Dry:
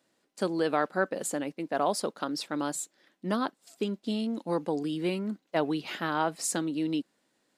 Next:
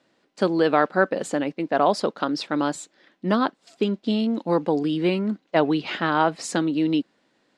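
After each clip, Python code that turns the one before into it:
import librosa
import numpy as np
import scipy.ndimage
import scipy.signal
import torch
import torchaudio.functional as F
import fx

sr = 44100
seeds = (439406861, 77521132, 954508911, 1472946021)

y = scipy.signal.sosfilt(scipy.signal.butter(2, 4500.0, 'lowpass', fs=sr, output='sos'), x)
y = F.gain(torch.from_numpy(y), 8.0).numpy()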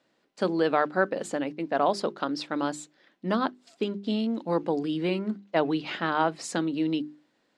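y = fx.hum_notches(x, sr, base_hz=50, count=8)
y = F.gain(torch.from_numpy(y), -4.5).numpy()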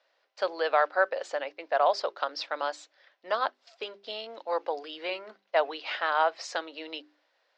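y = scipy.signal.sosfilt(scipy.signal.cheby1(3, 1.0, [560.0, 5600.0], 'bandpass', fs=sr, output='sos'), x)
y = F.gain(torch.from_numpy(y), 1.5).numpy()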